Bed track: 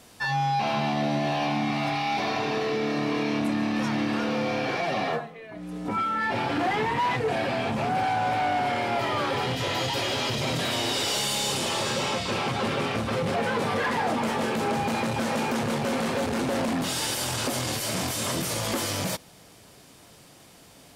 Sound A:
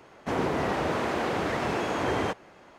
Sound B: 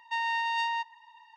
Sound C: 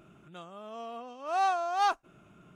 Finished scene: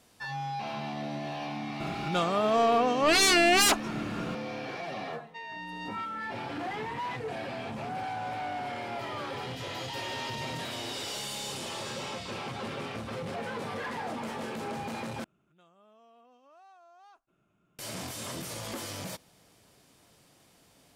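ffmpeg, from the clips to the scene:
ffmpeg -i bed.wav -i cue0.wav -i cue1.wav -i cue2.wav -filter_complex "[3:a]asplit=2[link_01][link_02];[2:a]asplit=2[link_03][link_04];[0:a]volume=-10dB[link_05];[link_01]aeval=exprs='0.133*sin(PI/2*7.08*val(0)/0.133)':channel_layout=same[link_06];[link_03]highpass=780,lowpass=7400[link_07];[link_02]acompressor=threshold=-40dB:ratio=6:attack=3.2:release=140:knee=1:detection=peak[link_08];[link_05]asplit=2[link_09][link_10];[link_09]atrim=end=15.244[link_11];[link_08]atrim=end=2.55,asetpts=PTS-STARTPTS,volume=-15dB[link_12];[link_10]atrim=start=17.786[link_13];[link_06]atrim=end=2.55,asetpts=PTS-STARTPTS,volume=-1.5dB,afade=type=in:duration=0.004:curve=hsin,afade=type=out:start_time=2.546:duration=0.004:curve=hsin,adelay=1800[link_14];[link_07]atrim=end=1.36,asetpts=PTS-STARTPTS,volume=-11dB,afade=type=in:duration=0.004:curve=hsin,afade=type=out:start_time=1.356:duration=0.004:curve=hsin,adelay=5230[link_15];[link_04]atrim=end=1.36,asetpts=PTS-STARTPTS,volume=-11.5dB,afade=type=in:duration=0.004:curve=hsin,afade=type=out:start_time=1.356:duration=0.004:curve=hsin,adelay=9820[link_16];[link_11][link_12]acrossfade=duration=0.004:curve1=hsin:curve2=hsin[link_17];[link_17][link_13]acrossfade=duration=0.004:curve1=hsin:curve2=hsin[link_18];[link_18][link_14][link_15][link_16]amix=inputs=4:normalize=0" out.wav

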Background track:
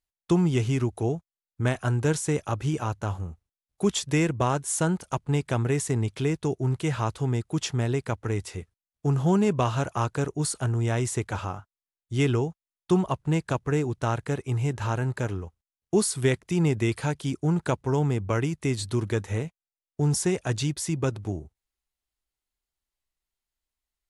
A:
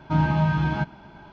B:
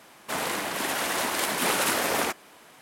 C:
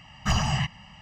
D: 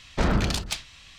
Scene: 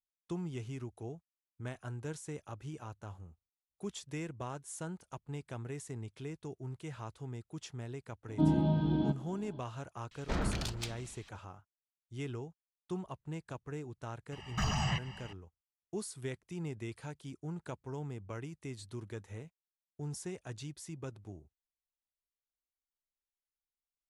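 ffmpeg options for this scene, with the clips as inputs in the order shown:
ffmpeg -i bed.wav -i cue0.wav -i cue1.wav -i cue2.wav -i cue3.wav -filter_complex "[0:a]volume=-17dB[link_01];[1:a]firequalizer=gain_entry='entry(140,0);entry(250,15);entry(1100,-9);entry(2300,-14);entry(3400,5);entry(4900,-6);entry(7200,-12)':delay=0.05:min_phase=1[link_02];[4:a]asplit=2[link_03][link_04];[link_04]adelay=449,volume=-18dB,highshelf=frequency=4000:gain=-10.1[link_05];[link_03][link_05]amix=inputs=2:normalize=0[link_06];[3:a]alimiter=limit=-22.5dB:level=0:latency=1:release=107[link_07];[link_02]atrim=end=1.32,asetpts=PTS-STARTPTS,volume=-11dB,afade=type=in:duration=0.004:curve=hsin,afade=type=out:start_time=1.316:duration=0.004:curve=hsin,adelay=8280[link_08];[link_06]atrim=end=1.18,asetpts=PTS-STARTPTS,volume=-11dB,afade=type=in:duration=0.004:curve=hsin,afade=type=out:start_time=1.176:duration=0.004:curve=hsin,adelay=10110[link_09];[link_07]atrim=end=1.01,asetpts=PTS-STARTPTS,volume=-1.5dB,afade=type=in:duration=0.004:curve=hsin,afade=type=out:start_time=1.006:duration=0.004:curve=hsin,adelay=14320[link_10];[link_01][link_08][link_09][link_10]amix=inputs=4:normalize=0" out.wav

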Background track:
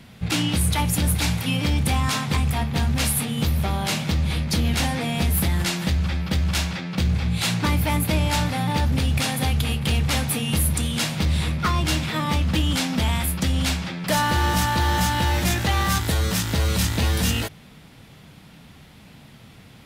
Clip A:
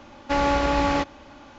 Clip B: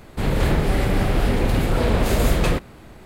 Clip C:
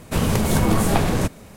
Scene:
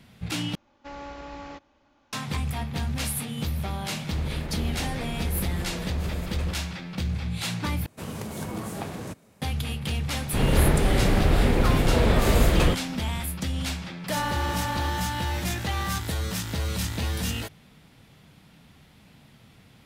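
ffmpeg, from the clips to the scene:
ffmpeg -i bed.wav -i cue0.wav -i cue1.wav -i cue2.wav -filter_complex "[1:a]asplit=2[link_01][link_02];[2:a]asplit=2[link_03][link_04];[0:a]volume=-7dB[link_05];[link_03]alimiter=limit=-15.5dB:level=0:latency=1:release=66[link_06];[3:a]highpass=90[link_07];[link_02]acompressor=threshold=-23dB:ratio=6:attack=3.2:release=140:knee=1:detection=peak[link_08];[link_05]asplit=3[link_09][link_10][link_11];[link_09]atrim=end=0.554[link_12];[link_01]atrim=end=1.58,asetpts=PTS-STARTPTS,volume=-18dB[link_13];[link_10]atrim=start=2.126:end=7.864[link_14];[link_07]atrim=end=1.56,asetpts=PTS-STARTPTS,volume=-14dB[link_15];[link_11]atrim=start=9.416[link_16];[link_06]atrim=end=3.05,asetpts=PTS-STARTPTS,volume=-11.5dB,afade=type=in:duration=0.004:curve=hsin,afade=type=out:start_time=3.046:duration=0.004:curve=hsin,adelay=3950[link_17];[link_04]atrim=end=3.05,asetpts=PTS-STARTPTS,volume=-1.5dB,afade=type=in:duration=0.004:curve=hsin,afade=type=out:start_time=3.046:duration=0.004:curve=hsin,adelay=10160[link_18];[link_08]atrim=end=1.58,asetpts=PTS-STARTPTS,volume=-7.5dB,afade=type=in:duration=0.004:curve=hsin,afade=type=out:start_time=1.576:duration=0.004:curve=hsin,adelay=13860[link_19];[link_12][link_13]acrossfade=duration=0.004:curve1=hsin:curve2=hsin[link_20];[link_20][link_14]acrossfade=duration=0.004:curve1=hsin:curve2=hsin[link_21];[link_21][link_15]acrossfade=duration=0.004:curve1=hsin:curve2=hsin[link_22];[link_22][link_16]acrossfade=duration=0.004:curve1=hsin:curve2=hsin[link_23];[link_23][link_17][link_18][link_19]amix=inputs=4:normalize=0" out.wav

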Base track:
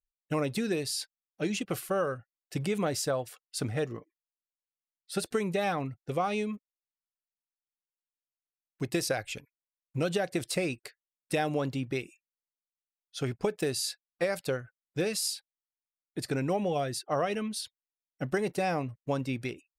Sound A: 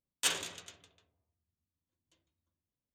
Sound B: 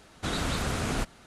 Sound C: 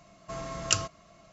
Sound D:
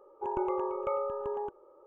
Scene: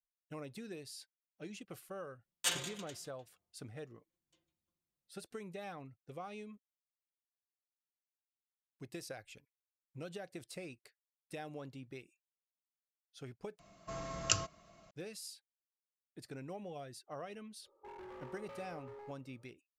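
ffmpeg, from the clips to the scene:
ffmpeg -i bed.wav -i cue0.wav -i cue1.wav -i cue2.wav -i cue3.wav -filter_complex "[0:a]volume=-16.5dB[link_01];[1:a]aecho=1:1:5.7:0.67[link_02];[4:a]volume=33.5dB,asoftclip=hard,volume=-33.5dB[link_03];[link_01]asplit=2[link_04][link_05];[link_04]atrim=end=13.594[link_06];[3:a]atrim=end=1.32,asetpts=PTS-STARTPTS,volume=-5.5dB[link_07];[link_05]atrim=start=14.906[link_08];[link_02]atrim=end=2.94,asetpts=PTS-STARTPTS,volume=-4dB,afade=type=in:duration=0.004:curve=hsin,afade=type=out:start_time=2.936:duration=0.004:curve=hsin,adelay=2210[link_09];[link_03]atrim=end=1.86,asetpts=PTS-STARTPTS,volume=-14.5dB,afade=type=in:duration=0.05,afade=type=out:start_time=1.81:duration=0.05,adelay=17620[link_10];[link_06][link_07]acrossfade=duration=0.004:curve1=hsin:curve2=hsin[link_11];[link_11][link_08]acrossfade=duration=0.004:curve1=hsin:curve2=hsin[link_12];[link_12][link_09][link_10]amix=inputs=3:normalize=0" out.wav

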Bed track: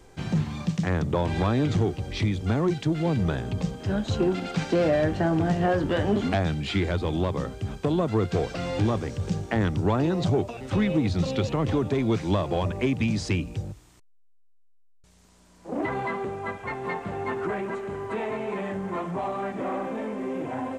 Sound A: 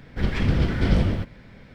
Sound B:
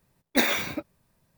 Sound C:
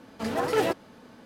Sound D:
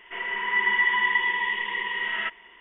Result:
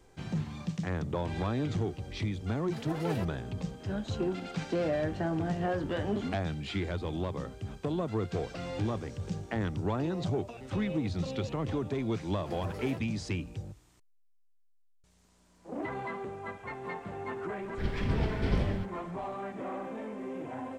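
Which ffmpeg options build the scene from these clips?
ffmpeg -i bed.wav -i cue0.wav -i cue1.wav -i cue2.wav -filter_complex "[3:a]asplit=2[link_01][link_02];[0:a]volume=-8dB[link_03];[link_02]alimiter=limit=-18dB:level=0:latency=1:release=25[link_04];[link_01]atrim=end=1.25,asetpts=PTS-STARTPTS,volume=-13dB,afade=type=in:duration=0.004:curve=hsin,afade=type=out:start_time=1.246:duration=0.004:curve=hsin,adelay=2520[link_05];[link_04]atrim=end=1.25,asetpts=PTS-STARTPTS,volume=-15.5dB,afade=type=in:duration=0.004:curve=hsin,afade=type=out:start_time=1.246:duration=0.004:curve=hsin,adelay=12260[link_06];[1:a]atrim=end=1.74,asetpts=PTS-STARTPTS,volume=-9dB,afade=type=in:duration=0.004:curve=hsin,afade=type=out:start_time=1.736:duration=0.004:curve=hsin,adelay=17610[link_07];[link_03][link_05][link_06][link_07]amix=inputs=4:normalize=0" out.wav

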